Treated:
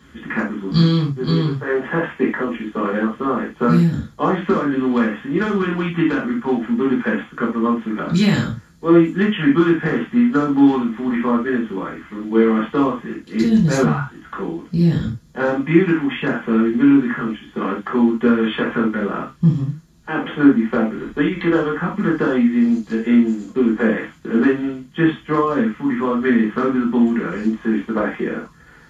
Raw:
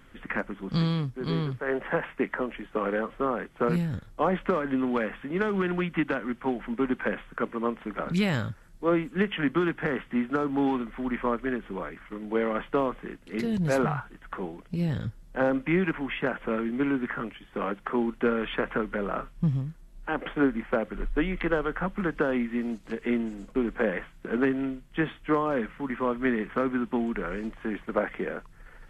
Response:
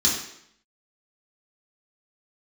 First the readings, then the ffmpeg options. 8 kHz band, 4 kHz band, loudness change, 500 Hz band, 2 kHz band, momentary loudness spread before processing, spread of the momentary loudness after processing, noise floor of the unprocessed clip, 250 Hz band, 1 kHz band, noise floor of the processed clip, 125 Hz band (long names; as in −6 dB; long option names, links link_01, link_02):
can't be measured, +9.5 dB, +10.5 dB, +7.5 dB, +7.5 dB, 8 LU, 9 LU, −52 dBFS, +12.5 dB, +7.5 dB, −46 dBFS, +10.5 dB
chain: -filter_complex "[1:a]atrim=start_sample=2205,atrim=end_sample=3969[link_01];[0:a][link_01]afir=irnorm=-1:irlink=0,volume=-5dB"